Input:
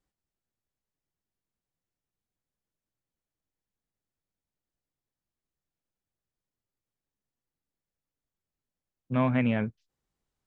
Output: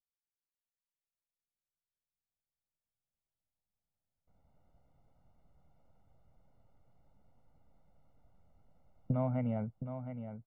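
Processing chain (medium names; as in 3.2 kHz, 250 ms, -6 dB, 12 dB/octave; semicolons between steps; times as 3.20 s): recorder AGC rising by 6.5 dB/s; gate with hold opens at -53 dBFS; Savitzky-Golay filter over 65 samples; comb 1.4 ms, depth 62%; on a send: feedback delay 716 ms, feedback 54%, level -9 dB; on the sum: trim -8.5 dB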